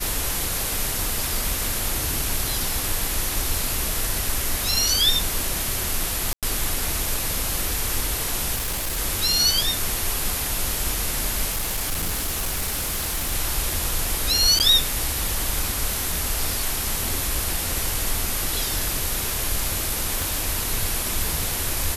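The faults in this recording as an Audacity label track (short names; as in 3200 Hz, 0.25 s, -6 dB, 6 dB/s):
6.330000	6.430000	gap 97 ms
8.550000	8.990000	clipped -22.5 dBFS
11.500000	13.330000	clipped -21 dBFS
14.590000	14.600000	gap 9.1 ms
20.220000	20.220000	pop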